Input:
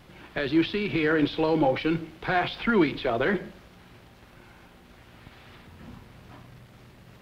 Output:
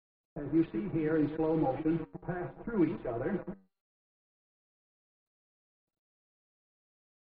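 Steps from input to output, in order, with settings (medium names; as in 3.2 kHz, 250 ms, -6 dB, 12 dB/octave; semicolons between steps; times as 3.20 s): chunks repeated in reverse 114 ms, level -10 dB; in parallel at -2 dB: compression 6:1, threshold -40 dBFS, peak gain reduction 21 dB; on the sum: bit crusher 5-bit; tilt shelf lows +7 dB; comb 6.2 ms, depth 77%; flange 0.64 Hz, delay 8.2 ms, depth 3.6 ms, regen +85%; gate -44 dBFS, range -30 dB; level-controlled noise filter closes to 560 Hz, open at -10.5 dBFS; low-pass 2.5 kHz 12 dB/octave; feedback comb 390 Hz, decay 0.42 s, harmonics all, mix 40%; trim -7 dB; MP2 32 kbps 44.1 kHz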